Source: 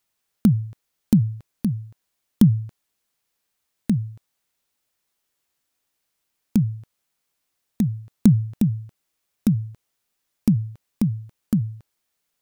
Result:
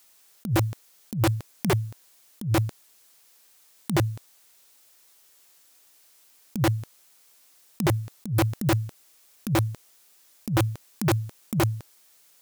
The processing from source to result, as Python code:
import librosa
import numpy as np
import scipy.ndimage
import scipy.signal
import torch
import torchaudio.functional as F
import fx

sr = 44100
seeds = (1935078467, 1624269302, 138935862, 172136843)

y = fx.bass_treble(x, sr, bass_db=-9, treble_db=5)
y = fx.over_compress(y, sr, threshold_db=-32.0, ratio=-1.0)
y = (np.mod(10.0 ** (25.5 / 20.0) * y + 1.0, 2.0) - 1.0) / 10.0 ** (25.5 / 20.0)
y = y * 10.0 ** (8.5 / 20.0)